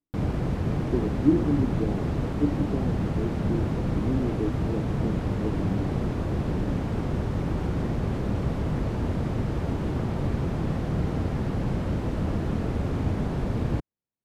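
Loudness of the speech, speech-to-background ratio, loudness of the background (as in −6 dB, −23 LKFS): −30.5 LKFS, −2.0 dB, −28.5 LKFS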